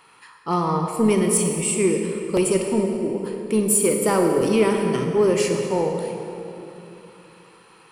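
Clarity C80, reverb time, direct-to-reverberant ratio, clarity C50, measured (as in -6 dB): 4.5 dB, 3.0 s, 3.0 dB, 3.5 dB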